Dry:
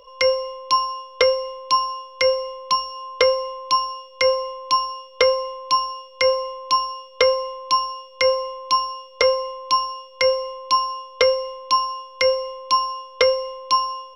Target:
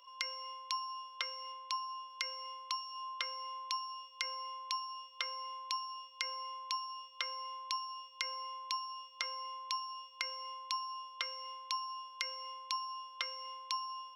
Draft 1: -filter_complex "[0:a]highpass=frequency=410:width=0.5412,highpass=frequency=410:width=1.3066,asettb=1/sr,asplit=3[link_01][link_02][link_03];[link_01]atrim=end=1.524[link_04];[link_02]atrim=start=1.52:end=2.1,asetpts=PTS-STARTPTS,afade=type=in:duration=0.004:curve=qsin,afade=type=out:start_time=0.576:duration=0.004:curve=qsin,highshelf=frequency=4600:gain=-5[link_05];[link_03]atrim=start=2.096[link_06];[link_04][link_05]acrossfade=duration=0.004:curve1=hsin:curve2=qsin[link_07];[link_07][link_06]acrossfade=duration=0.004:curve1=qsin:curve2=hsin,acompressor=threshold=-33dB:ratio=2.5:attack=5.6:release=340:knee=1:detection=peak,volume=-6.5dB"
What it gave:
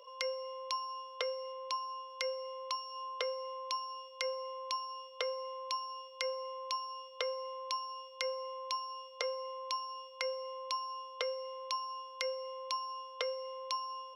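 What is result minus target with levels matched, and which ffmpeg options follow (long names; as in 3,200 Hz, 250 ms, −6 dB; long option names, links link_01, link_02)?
500 Hz band +17.5 dB
-filter_complex "[0:a]highpass=frequency=1000:width=0.5412,highpass=frequency=1000:width=1.3066,asettb=1/sr,asplit=3[link_01][link_02][link_03];[link_01]atrim=end=1.524[link_04];[link_02]atrim=start=1.52:end=2.1,asetpts=PTS-STARTPTS,afade=type=in:duration=0.004:curve=qsin,afade=type=out:start_time=0.576:duration=0.004:curve=qsin,highshelf=frequency=4600:gain=-5[link_05];[link_03]atrim=start=2.096[link_06];[link_04][link_05]acrossfade=duration=0.004:curve1=hsin:curve2=qsin[link_07];[link_07][link_06]acrossfade=duration=0.004:curve1=qsin:curve2=hsin,acompressor=threshold=-33dB:ratio=2.5:attack=5.6:release=340:knee=1:detection=peak,volume=-6.5dB"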